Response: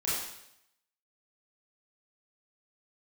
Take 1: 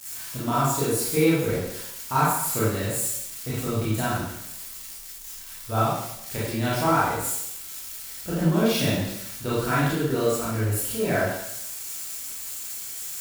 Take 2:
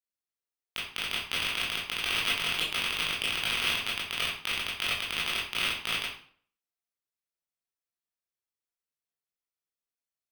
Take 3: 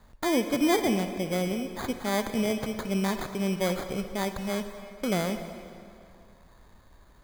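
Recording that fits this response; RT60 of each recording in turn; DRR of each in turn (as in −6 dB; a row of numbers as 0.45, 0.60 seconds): 1; 0.80, 0.50, 2.4 seconds; −9.0, −7.5, 8.0 decibels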